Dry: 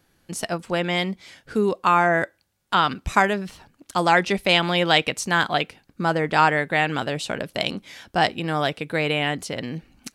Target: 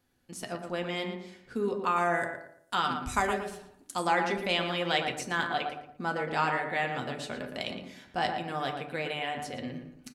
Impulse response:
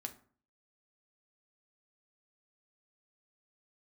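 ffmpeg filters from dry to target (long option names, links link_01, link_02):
-filter_complex "[0:a]asettb=1/sr,asplit=3[link_01][link_02][link_03];[link_01]atrim=end=1.964[link_04];[link_02]atrim=start=1.96:end=4.07,asetpts=PTS-STARTPTS,afade=type=in:duration=0.004:curve=qsin,afade=type=out:start_time=2.106:duration=0.004:curve=qsin,equalizer=frequency=9400:width=0.74:gain=12[link_05];[link_03]atrim=start=4.066[link_06];[link_04][link_05]acrossfade=duration=0.004:curve1=hsin:curve2=qsin[link_07];[link_07][link_06]acrossfade=duration=0.004:curve1=qsin:curve2=hsin,asplit=2[link_08][link_09];[link_09]adelay=115,lowpass=frequency=1800:poles=1,volume=-5dB,asplit=2[link_10][link_11];[link_11]adelay=115,lowpass=frequency=1800:poles=1,volume=0.35,asplit=2[link_12][link_13];[link_13]adelay=115,lowpass=frequency=1800:poles=1,volume=0.35,asplit=2[link_14][link_15];[link_15]adelay=115,lowpass=frequency=1800:poles=1,volume=0.35[link_16];[link_08][link_10][link_12][link_14][link_16]amix=inputs=5:normalize=0[link_17];[1:a]atrim=start_sample=2205[link_18];[link_17][link_18]afir=irnorm=-1:irlink=0,volume=-7.5dB"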